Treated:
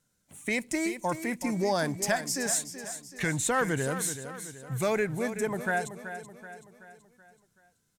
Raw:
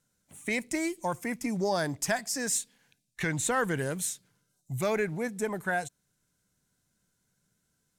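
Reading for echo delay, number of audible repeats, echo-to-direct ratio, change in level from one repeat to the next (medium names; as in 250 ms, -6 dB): 379 ms, 4, -10.0 dB, -6.0 dB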